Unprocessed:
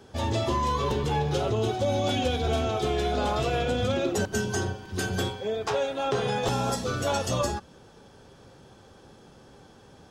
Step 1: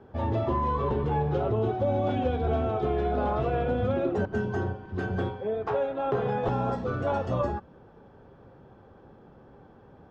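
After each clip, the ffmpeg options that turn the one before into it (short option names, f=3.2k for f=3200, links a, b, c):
-af "lowpass=1.4k"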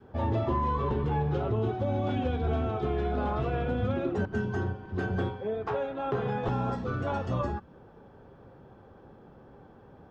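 -af "adynamicequalizer=threshold=0.00891:dfrequency=590:dqfactor=1.2:tfrequency=590:tqfactor=1.2:attack=5:release=100:ratio=0.375:range=3:mode=cutabove:tftype=bell"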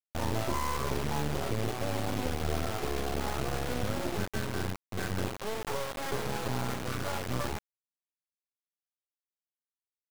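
-af "acrusher=bits=3:dc=4:mix=0:aa=0.000001"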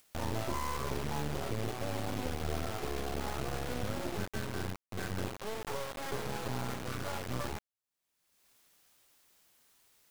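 -af "acompressor=mode=upward:threshold=-36dB:ratio=2.5,volume=-4dB"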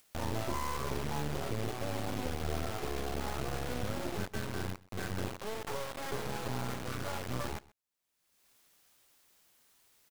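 -af "aecho=1:1:130:0.0794"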